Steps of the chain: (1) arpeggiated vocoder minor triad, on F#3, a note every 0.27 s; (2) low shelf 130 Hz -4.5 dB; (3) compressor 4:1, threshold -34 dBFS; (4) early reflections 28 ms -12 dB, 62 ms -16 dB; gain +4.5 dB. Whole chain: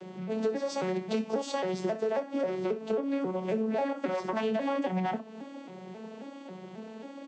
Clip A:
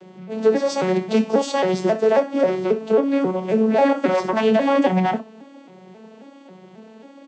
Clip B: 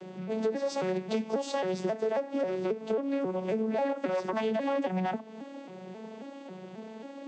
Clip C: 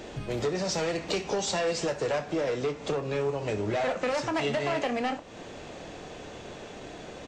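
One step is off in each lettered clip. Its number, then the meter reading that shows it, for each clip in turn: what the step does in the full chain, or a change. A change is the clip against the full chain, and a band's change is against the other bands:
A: 3, mean gain reduction 7.5 dB; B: 4, echo-to-direct -10.5 dB to none; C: 1, 4 kHz band +7.5 dB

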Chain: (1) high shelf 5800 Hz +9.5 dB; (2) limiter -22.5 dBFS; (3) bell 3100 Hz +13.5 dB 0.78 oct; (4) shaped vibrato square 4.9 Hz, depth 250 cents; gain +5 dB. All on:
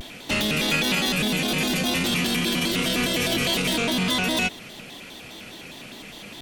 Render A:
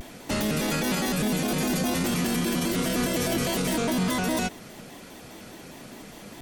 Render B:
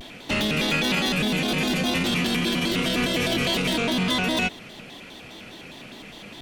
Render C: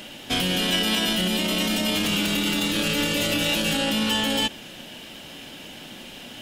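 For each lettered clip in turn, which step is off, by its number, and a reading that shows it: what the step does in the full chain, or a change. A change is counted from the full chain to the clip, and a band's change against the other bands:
3, 4 kHz band -9.0 dB; 1, 8 kHz band -5.5 dB; 4, 4 kHz band +2.0 dB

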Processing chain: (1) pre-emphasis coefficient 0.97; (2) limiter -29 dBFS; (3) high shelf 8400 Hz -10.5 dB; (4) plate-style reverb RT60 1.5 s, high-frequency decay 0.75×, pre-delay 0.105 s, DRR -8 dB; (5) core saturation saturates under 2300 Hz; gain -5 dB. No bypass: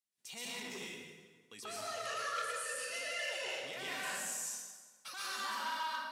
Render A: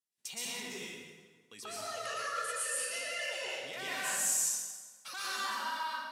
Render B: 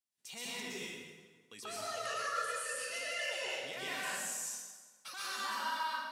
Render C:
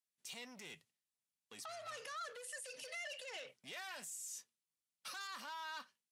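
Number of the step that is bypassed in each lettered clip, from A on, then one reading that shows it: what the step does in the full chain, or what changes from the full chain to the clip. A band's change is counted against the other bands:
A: 2, mean gain reduction 1.5 dB; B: 5, loudness change +1.0 LU; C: 4, momentary loudness spread change -5 LU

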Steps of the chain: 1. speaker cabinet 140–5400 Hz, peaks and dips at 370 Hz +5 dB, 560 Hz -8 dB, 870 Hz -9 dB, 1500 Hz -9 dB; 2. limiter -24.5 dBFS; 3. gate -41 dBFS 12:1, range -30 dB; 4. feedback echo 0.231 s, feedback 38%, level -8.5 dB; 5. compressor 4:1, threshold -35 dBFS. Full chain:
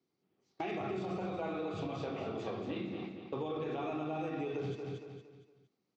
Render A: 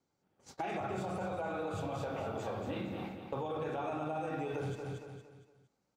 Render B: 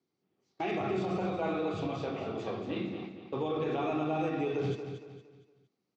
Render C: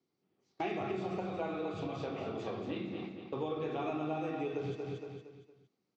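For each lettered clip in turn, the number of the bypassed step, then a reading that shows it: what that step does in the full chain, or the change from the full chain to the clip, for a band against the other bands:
1, 250 Hz band -3.5 dB; 5, loudness change +5.0 LU; 2, mean gain reduction 1.5 dB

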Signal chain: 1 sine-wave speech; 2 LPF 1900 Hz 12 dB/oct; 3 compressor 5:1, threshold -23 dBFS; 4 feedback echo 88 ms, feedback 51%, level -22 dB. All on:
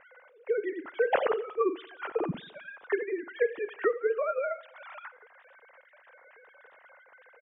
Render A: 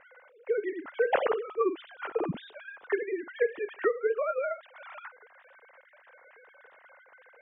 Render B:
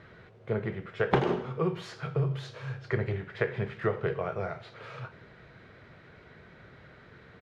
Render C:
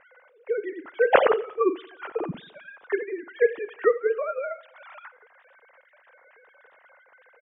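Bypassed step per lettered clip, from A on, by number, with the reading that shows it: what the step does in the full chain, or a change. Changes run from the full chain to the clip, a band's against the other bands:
4, echo-to-direct -20.5 dB to none; 1, 125 Hz band +18.5 dB; 3, mean gain reduction 2.0 dB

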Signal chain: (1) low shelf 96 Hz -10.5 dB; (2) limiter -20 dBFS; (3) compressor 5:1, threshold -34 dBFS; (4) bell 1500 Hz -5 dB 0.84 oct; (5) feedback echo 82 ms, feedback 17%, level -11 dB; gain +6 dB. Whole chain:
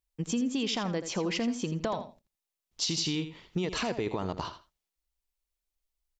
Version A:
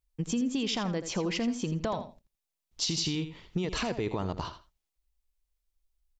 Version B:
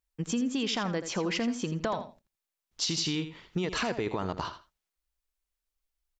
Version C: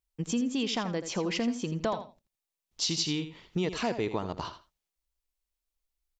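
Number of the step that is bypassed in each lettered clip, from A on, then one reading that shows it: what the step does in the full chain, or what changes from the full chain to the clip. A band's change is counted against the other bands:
1, 125 Hz band +2.0 dB; 4, 2 kHz band +2.5 dB; 2, mean gain reduction 1.5 dB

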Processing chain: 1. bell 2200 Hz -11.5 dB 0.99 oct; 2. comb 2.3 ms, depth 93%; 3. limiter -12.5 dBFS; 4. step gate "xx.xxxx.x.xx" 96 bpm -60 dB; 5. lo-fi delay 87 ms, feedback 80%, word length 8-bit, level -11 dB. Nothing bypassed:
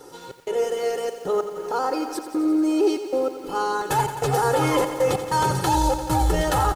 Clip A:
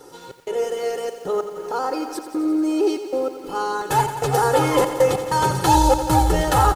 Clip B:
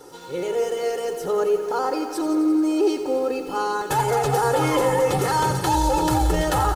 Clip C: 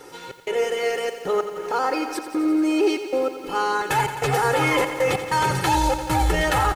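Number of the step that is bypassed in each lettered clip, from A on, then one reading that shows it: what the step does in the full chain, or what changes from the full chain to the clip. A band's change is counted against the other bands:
3, crest factor change +3.5 dB; 4, momentary loudness spread change -1 LU; 1, 2 kHz band +7.0 dB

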